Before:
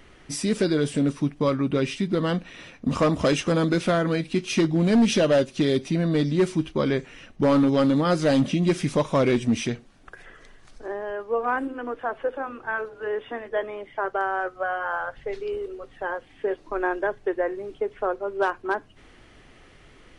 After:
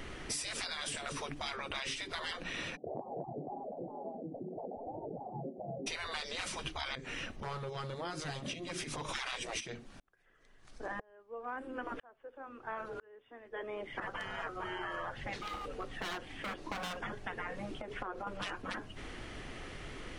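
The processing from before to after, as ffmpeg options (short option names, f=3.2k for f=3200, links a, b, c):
-filter_complex "[0:a]asplit=3[a][b][c];[a]afade=t=out:st=2.75:d=0.02[d];[b]asuperpass=centerf=350:order=20:qfactor=0.56,afade=t=in:st=2.75:d=0.02,afade=t=out:st=5.86:d=0.02[e];[c]afade=t=in:st=5.86:d=0.02[f];[d][e][f]amix=inputs=3:normalize=0,asettb=1/sr,asplit=3[g][h][i];[g]atrim=end=6.954[j];[h]atrim=start=6.95:end=9.09,asetpts=PTS-STARTPTS,afade=t=in:d=0.004:c=qsin,afade=t=out:st=2.136:d=0.004:c=qsin,acompressor=threshold=-39dB:ratio=3:attack=3.2:release=140:knee=1:detection=peak[k];[i]atrim=start=9.086[l];[j][k]acrossfade=d=0.004:c1=hsin:c2=qsin[m];[m][l]acrossfade=d=0.004:c1=qsin:c2=hsin,asplit=3[n][o][p];[n]afade=t=out:st=9.59:d=0.02[q];[o]aeval=exprs='val(0)*pow(10,-40*if(lt(mod(-1*n/s,1),2*abs(-1)/1000),1-mod(-1*n/s,1)/(2*abs(-1)/1000),(mod(-1*n/s,1)-2*abs(-1)/1000)/(1-2*abs(-1)/1000))/20)':c=same,afade=t=in:st=9.59:d=0.02,afade=t=out:st=14:d=0.02[r];[p]afade=t=in:st=14:d=0.02[s];[q][r][s]amix=inputs=3:normalize=0,asettb=1/sr,asplit=3[t][u][v];[t]atrim=end=15.384[w];[u]atrim=start=15.38:end=16.97,asetpts=PTS-STARTPTS,afade=t=in:d=0.004:c=qsin,afade=t=out:st=1.586:d=0.004:c=qsin,asoftclip=type=hard:threshold=-31dB[x];[v]atrim=start=16.966[y];[w][x]acrossfade=d=0.004:c1=hsin:c2=qsin[z];[z][y]acrossfade=d=0.004:c1=qsin:c2=hsin,asettb=1/sr,asplit=3[aa][ab][ac];[aa]atrim=end=17.784[ad];[ab]atrim=start=17.78:end=18.27,asetpts=PTS-STARTPTS,afade=t=in:d=0.004:c=qsin,afade=t=out:st=0.486:d=0.004:c=qsin,acompressor=threshold=-33dB:ratio=8:attack=3.2:release=140:knee=1:detection=peak[ae];[ac]atrim=start=18.266[af];[ad][ae]acrossfade=d=0.004:c1=hsin:c2=qsin[ag];[ag][af]acrossfade=d=0.004:c1=qsin:c2=hsin,afftfilt=real='re*lt(hypot(re,im),0.0708)':imag='im*lt(hypot(re,im),0.0708)':win_size=1024:overlap=0.75,acompressor=threshold=-42dB:ratio=6,volume=6dB"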